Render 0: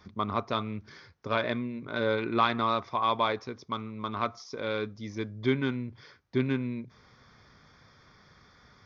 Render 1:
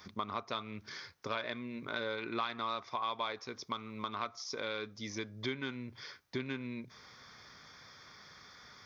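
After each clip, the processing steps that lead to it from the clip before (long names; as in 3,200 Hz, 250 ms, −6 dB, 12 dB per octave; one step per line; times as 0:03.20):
spectral tilt +2.5 dB per octave
downward compressor 3 to 1, threshold −39 dBFS, peak gain reduction 15.5 dB
level +2 dB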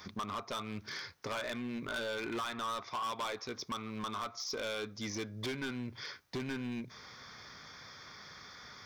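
hard clipping −37.5 dBFS, distortion −7 dB
level +4 dB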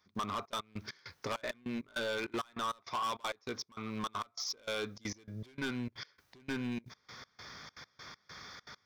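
gate pattern "..xxxx.x..xx" 199 BPM −24 dB
level +2 dB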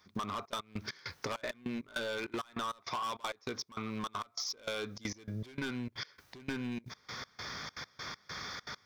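downward compressor, threshold −43 dBFS, peak gain reduction 9.5 dB
level +7.5 dB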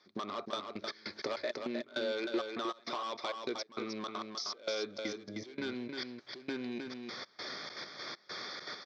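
loudspeaker in its box 250–5,300 Hz, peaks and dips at 350 Hz +7 dB, 590 Hz +5 dB, 1,000 Hz −5 dB, 1,500 Hz −3 dB, 2,800 Hz −5 dB, 4,200 Hz +5 dB
single-tap delay 310 ms −5.5 dB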